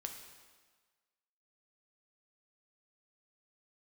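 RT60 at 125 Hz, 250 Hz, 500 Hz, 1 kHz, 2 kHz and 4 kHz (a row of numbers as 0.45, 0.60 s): 1.2, 1.3, 1.4, 1.5, 1.4, 1.3 s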